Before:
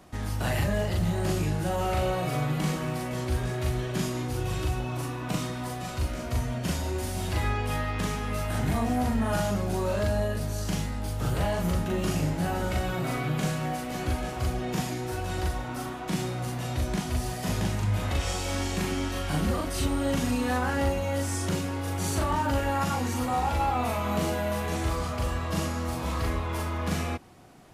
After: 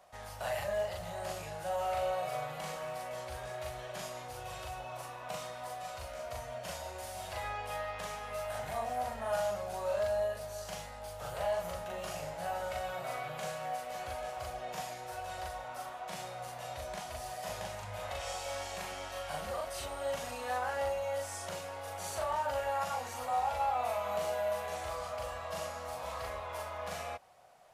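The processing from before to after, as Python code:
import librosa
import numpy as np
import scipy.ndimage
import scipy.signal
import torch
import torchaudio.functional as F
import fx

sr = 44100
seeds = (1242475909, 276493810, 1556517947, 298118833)

y = fx.low_shelf_res(x, sr, hz=430.0, db=-11.5, q=3.0)
y = y * librosa.db_to_amplitude(-8.5)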